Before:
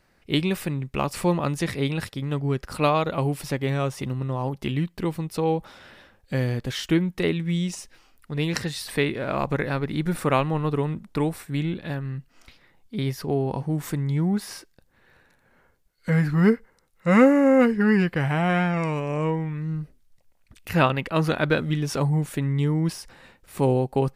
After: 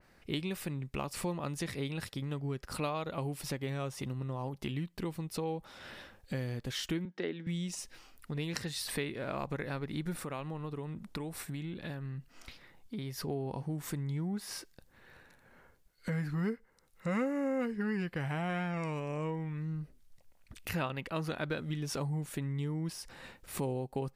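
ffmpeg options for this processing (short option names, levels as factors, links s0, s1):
-filter_complex "[0:a]asettb=1/sr,asplit=3[s0][s1][s2];[s0]atrim=end=7.054[s3];[s1]atrim=start=7.05:end=7.47,asetpts=PTS-STARTPTS,afade=t=in:d=0.004:c=qsin,afade=t=out:st=0.416:d=0.004:c=qsin,highpass=f=210:w=0.5412,highpass=f=210:w=1.3066,equalizer=f=1100:t=q:w=4:g=-7,equalizer=f=1600:t=q:w=4:g=4,equalizer=f=2500:t=q:w=4:g=-8,equalizer=f=4000:t=q:w=4:g=-6,lowpass=f=4800:w=0.5412,lowpass=f=4800:w=1.3066[s4];[s2]atrim=start=7.466[s5];[s3][s4]acrossfade=d=0.004:c1=hsin:c2=qsin[s6];[s6][s5]acrossfade=d=0.004:c1=qsin:c2=hsin,asettb=1/sr,asplit=3[s7][s8][s9];[s7]atrim=end=10.224[s10];[s8]atrim=start=10.22:end=13.25,asetpts=PTS-STARTPTS,afade=t=in:d=0.004:c=qsin,afade=t=out:st=3.026:d=0.004:c=qsin,acompressor=threshold=0.0178:ratio=2:attack=3.2:release=140:knee=1:detection=peak[s11];[s9]atrim=start=13.246[s12];[s10][s11]acrossfade=d=0.004:c1=hsin:c2=qsin[s13];[s13][s12]acrossfade=d=0.004:c1=qsin:c2=hsin,acompressor=threshold=0.0112:ratio=2.5,adynamicequalizer=threshold=0.00251:dfrequency=3100:dqfactor=0.7:tfrequency=3100:tqfactor=0.7:attack=5:release=100:ratio=0.375:range=1.5:mode=boostabove:tftype=highshelf"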